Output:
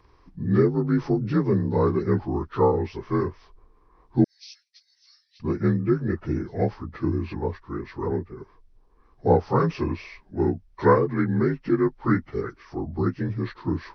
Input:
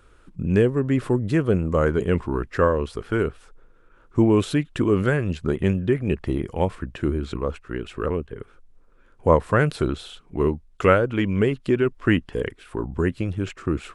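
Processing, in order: frequency axis rescaled in octaves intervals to 84%; 4.24–5.40 s: inverse Chebyshev high-pass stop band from 700 Hz, stop band 80 dB

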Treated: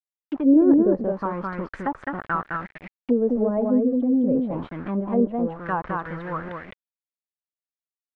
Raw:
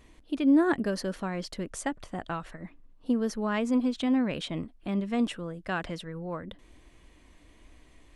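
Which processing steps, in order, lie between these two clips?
3.49–4.38 s: spectral contrast enhancement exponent 1.6; peaking EQ 710 Hz -6.5 dB 0.4 oct; small samples zeroed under -39.5 dBFS; delay 211 ms -3 dB; touch-sensitive low-pass 500–2900 Hz down, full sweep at -23 dBFS; trim +2.5 dB

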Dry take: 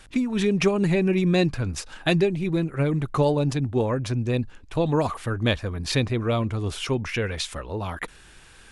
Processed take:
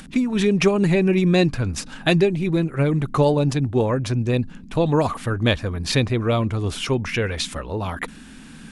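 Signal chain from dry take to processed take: band noise 150–280 Hz -47 dBFS; upward compressor, threshold -44 dBFS; trim +3.5 dB

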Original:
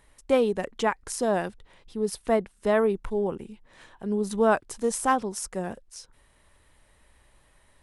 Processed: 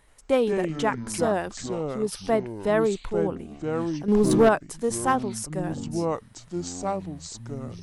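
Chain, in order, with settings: ever faster or slower copies 80 ms, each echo -5 st, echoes 3, each echo -6 dB; 4.08–4.49 s: waveshaping leveller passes 2

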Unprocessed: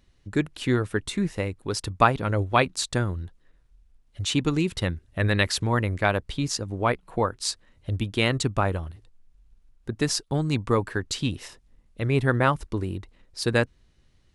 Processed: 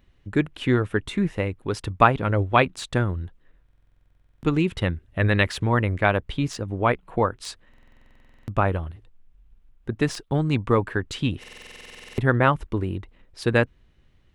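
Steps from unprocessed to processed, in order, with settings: de-esser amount 45%; high-order bell 6.8 kHz -10 dB; buffer glitch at 3.64/7.69/11.39 s, samples 2048, times 16; trim +2.5 dB

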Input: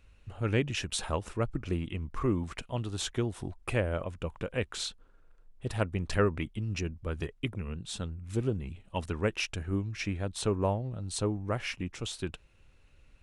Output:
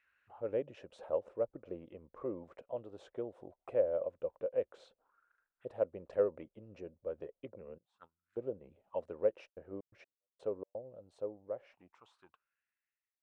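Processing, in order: fade out at the end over 3.32 s; 7.78–8.61 s: gate -32 dBFS, range -21 dB; auto-wah 540–1900 Hz, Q 6.4, down, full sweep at -36 dBFS; 9.48–10.87 s: trance gate ".xx.x...xx" 127 bpm -60 dB; trim +5 dB

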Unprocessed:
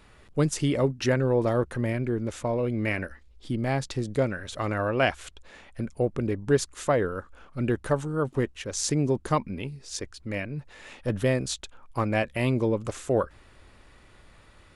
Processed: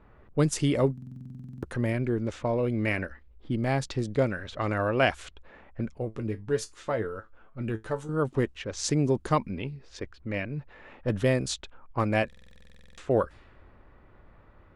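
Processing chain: level-controlled noise filter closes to 1.2 kHz, open at -22.5 dBFS; 5.98–8.09 s: feedback comb 110 Hz, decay 0.16 s, harmonics all, mix 80%; buffer glitch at 0.93/12.28 s, samples 2048, times 14

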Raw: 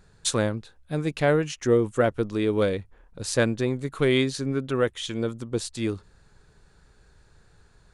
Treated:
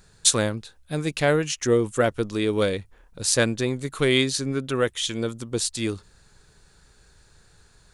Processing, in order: treble shelf 2.9 kHz +10.5 dB

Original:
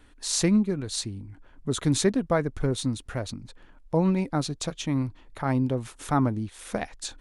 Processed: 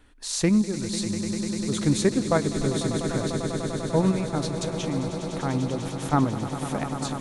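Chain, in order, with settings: in parallel at -0.5 dB: level held to a coarse grid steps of 22 dB; on the sum: echo with a slow build-up 99 ms, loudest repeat 8, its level -13 dB; trim -3.5 dB

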